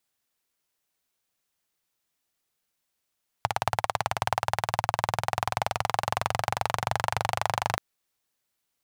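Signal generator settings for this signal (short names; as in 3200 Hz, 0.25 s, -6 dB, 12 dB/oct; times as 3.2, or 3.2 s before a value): single-cylinder engine model, changing speed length 4.33 s, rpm 2100, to 3000, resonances 110/790 Hz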